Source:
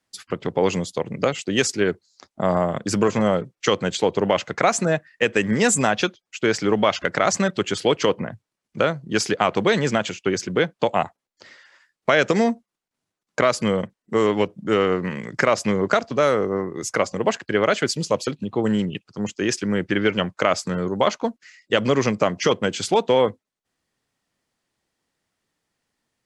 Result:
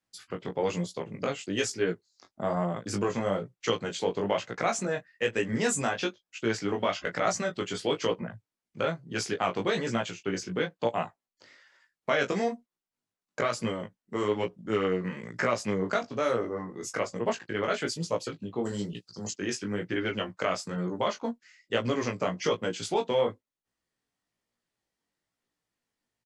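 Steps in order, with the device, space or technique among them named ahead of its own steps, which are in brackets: double-tracked vocal (doubler 17 ms -8 dB; chorus 1.1 Hz, delay 17 ms, depth 4.4 ms); 18.65–19.34 resonant high shelf 3500 Hz +9.5 dB, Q 3; gain -6.5 dB

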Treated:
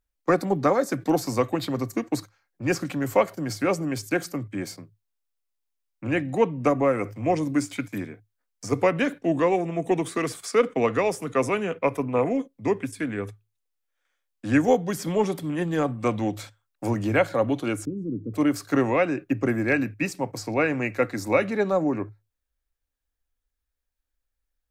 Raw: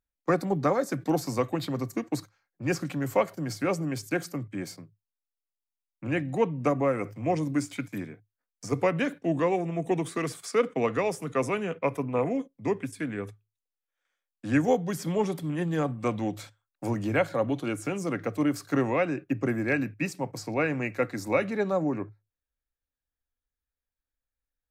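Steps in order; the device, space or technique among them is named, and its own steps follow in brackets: 17.85–18.34 inverse Chebyshev low-pass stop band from 680 Hz, stop band 40 dB; low shelf boost with a cut just above (low shelf 67 Hz +7 dB; bell 150 Hz -6 dB 0.59 oct); gain +4 dB

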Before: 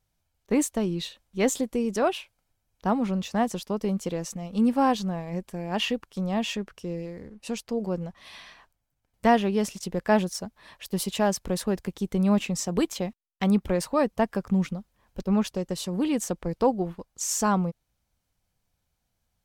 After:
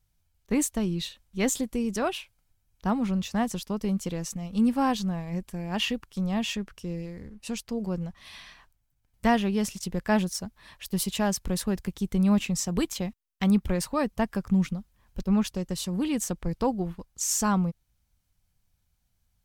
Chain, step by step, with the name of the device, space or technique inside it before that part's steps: smiley-face EQ (low shelf 120 Hz +7.5 dB; bell 520 Hz -6 dB 1.8 oct; high shelf 9300 Hz +4 dB)

